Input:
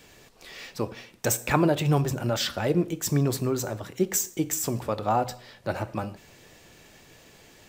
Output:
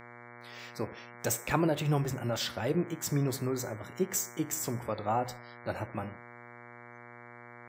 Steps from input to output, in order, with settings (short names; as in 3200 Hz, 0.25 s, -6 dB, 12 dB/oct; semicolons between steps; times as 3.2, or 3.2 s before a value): spectral noise reduction 25 dB; buzz 120 Hz, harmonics 19, -44 dBFS -1 dB/oct; gain -6 dB